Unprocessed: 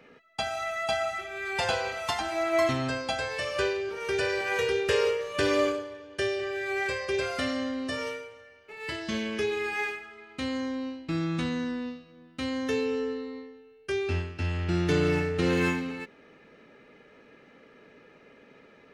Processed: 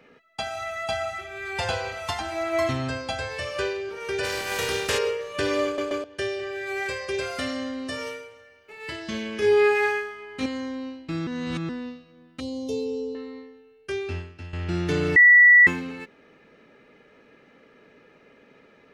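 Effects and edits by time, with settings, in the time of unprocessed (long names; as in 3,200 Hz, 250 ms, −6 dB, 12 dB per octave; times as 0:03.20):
0:00.55–0:03.51: parametric band 87 Hz +10.5 dB 0.78 octaves
0:04.23–0:04.97: compressing power law on the bin magnitudes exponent 0.56
0:05.65: stutter in place 0.13 s, 3 plays
0:06.67–0:08.77: high-shelf EQ 7,200 Hz +6 dB
0:09.40–0:10.46: flutter between parallel walls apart 3.3 metres, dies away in 0.59 s
0:11.27–0:11.69: reverse
0:12.40–0:13.15: Chebyshev band-stop filter 640–4,100 Hz
0:13.94–0:14.53: fade out linear, to −12.5 dB
0:15.16–0:15.67: beep over 1,950 Hz −9.5 dBFS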